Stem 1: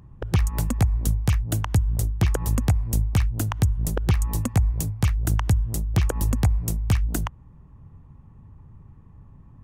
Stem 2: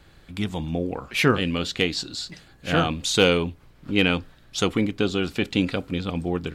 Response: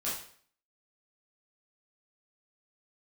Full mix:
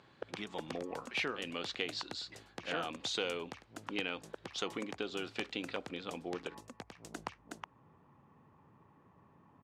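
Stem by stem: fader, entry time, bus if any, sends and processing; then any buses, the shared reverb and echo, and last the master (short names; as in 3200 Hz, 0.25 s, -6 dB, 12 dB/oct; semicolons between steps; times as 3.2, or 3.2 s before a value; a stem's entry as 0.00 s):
-2.0 dB, 0.00 s, no send, echo send -3.5 dB, compressor 12:1, threshold -29 dBFS, peak gain reduction 15 dB; auto duck -20 dB, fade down 1.90 s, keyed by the second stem
-8.5 dB, 0.00 s, no send, no echo send, compressor 6:1, threshold -22 dBFS, peak gain reduction 9.5 dB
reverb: off
echo: echo 0.368 s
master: BPF 370–4900 Hz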